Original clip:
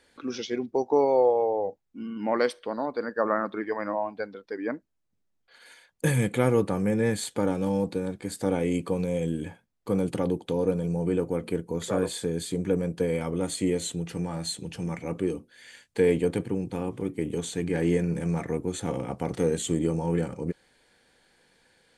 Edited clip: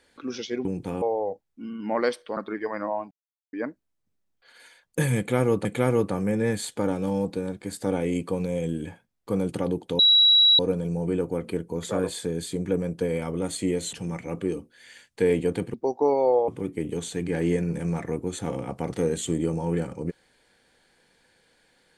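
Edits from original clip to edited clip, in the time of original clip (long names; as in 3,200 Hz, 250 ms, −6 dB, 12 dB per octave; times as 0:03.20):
0:00.65–0:01.39: swap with 0:16.52–0:16.89
0:02.74–0:03.43: remove
0:04.17–0:04.59: silence
0:06.24–0:06.71: repeat, 2 plays
0:10.58: insert tone 3,890 Hz −13.5 dBFS 0.60 s
0:13.92–0:14.71: remove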